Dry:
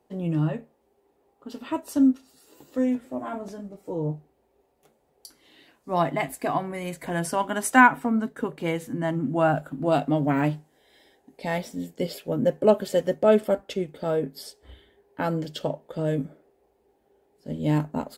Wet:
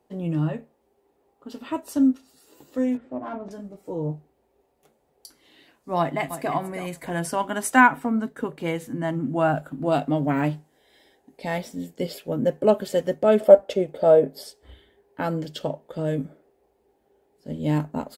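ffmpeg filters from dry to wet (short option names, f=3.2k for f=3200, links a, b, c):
-filter_complex "[0:a]asettb=1/sr,asplit=3[a][b][c];[a]atrim=end=2.974[d];[b]atrim=start=2.97:end=3.51,asetpts=PTS-STARTPTS,afade=t=in:d=0.004:c=qsin,afade=t=out:st=0.536:d=0.004:c=qsin,adynamicsmooth=sensitivity=3:basefreq=2.4k[e];[c]atrim=start=3.506[f];[d][e]acrossfade=d=0.004:c1=hsin:c2=qsin[g];[g][f]acrossfade=d=0.004:c1=qsin:c2=hsin,asplit=2[h][i];[i]afade=t=in:st=5.98:d=0.01,afade=t=out:st=6.54:d=0.01,aecho=0:1:320|640|960:0.266073|0.0532145|0.0106429[j];[h][j]amix=inputs=2:normalize=0,asettb=1/sr,asplit=3[k][l][m];[k]atrim=end=13.404[n];[l]atrim=start=13.4:end=14.44,asetpts=PTS-STARTPTS,afade=t=in:d=0.004:c=qsin,afade=t=out:st=1.036:d=0.004:c=qsin,equalizer=f=600:w=1.5:g=13.5[o];[m]atrim=start=14.436[p];[n][o]acrossfade=d=0.004:c1=hsin:c2=qsin[q];[q][p]acrossfade=d=0.004:c1=qsin:c2=hsin"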